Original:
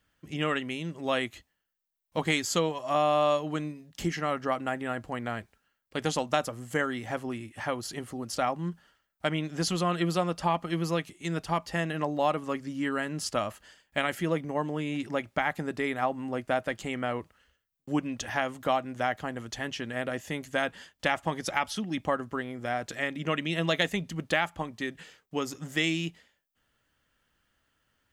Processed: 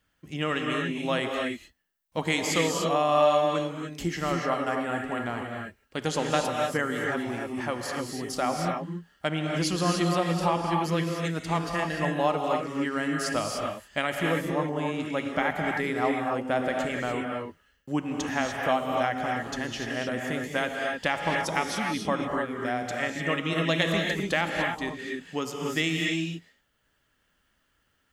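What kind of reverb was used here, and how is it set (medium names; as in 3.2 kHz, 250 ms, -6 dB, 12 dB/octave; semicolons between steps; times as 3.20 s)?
gated-style reverb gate 320 ms rising, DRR 0.5 dB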